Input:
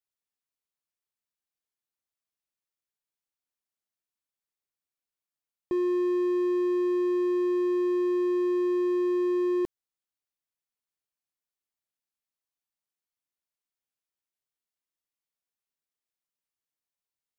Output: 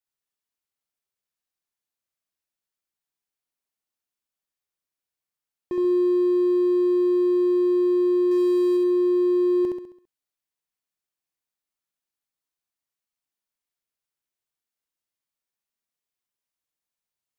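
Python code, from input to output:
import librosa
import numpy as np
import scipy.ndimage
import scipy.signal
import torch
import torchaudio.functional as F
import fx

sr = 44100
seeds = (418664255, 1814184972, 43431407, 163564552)

p1 = fx.high_shelf(x, sr, hz=2900.0, db=11.0, at=(8.31, 8.77))
y = p1 + fx.echo_feedback(p1, sr, ms=67, feedback_pct=46, wet_db=-3.0, dry=0)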